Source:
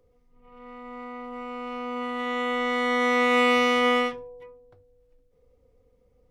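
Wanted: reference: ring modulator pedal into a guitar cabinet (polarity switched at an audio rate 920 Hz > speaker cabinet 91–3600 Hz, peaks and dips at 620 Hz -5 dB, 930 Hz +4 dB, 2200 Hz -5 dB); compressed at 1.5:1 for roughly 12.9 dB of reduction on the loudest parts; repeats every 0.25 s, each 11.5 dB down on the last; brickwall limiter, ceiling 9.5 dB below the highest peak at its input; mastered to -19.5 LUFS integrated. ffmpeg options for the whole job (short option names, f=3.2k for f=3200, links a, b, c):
-af "acompressor=threshold=-55dB:ratio=1.5,alimiter=level_in=9dB:limit=-24dB:level=0:latency=1,volume=-9dB,aecho=1:1:250|500|750:0.266|0.0718|0.0194,aeval=exprs='val(0)*sgn(sin(2*PI*920*n/s))':c=same,highpass=91,equalizer=f=620:t=q:w=4:g=-5,equalizer=f=930:t=q:w=4:g=4,equalizer=f=2.2k:t=q:w=4:g=-5,lowpass=f=3.6k:w=0.5412,lowpass=f=3.6k:w=1.3066,volume=24dB"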